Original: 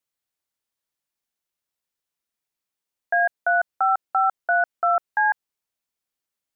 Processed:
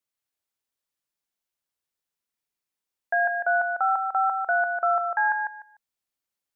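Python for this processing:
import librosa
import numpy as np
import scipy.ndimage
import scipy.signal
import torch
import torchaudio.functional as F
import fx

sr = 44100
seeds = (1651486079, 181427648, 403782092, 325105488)

y = fx.echo_feedback(x, sr, ms=149, feedback_pct=20, wet_db=-5.5)
y = y * 10.0 ** (-3.0 / 20.0)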